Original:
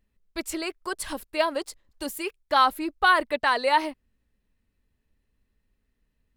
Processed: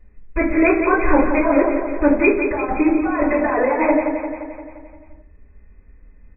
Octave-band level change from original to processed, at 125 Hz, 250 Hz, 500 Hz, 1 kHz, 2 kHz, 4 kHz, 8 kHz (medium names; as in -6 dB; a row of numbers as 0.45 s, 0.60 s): no reading, +18.0 dB, +12.0 dB, +2.0 dB, +4.0 dB, under -40 dB, under -40 dB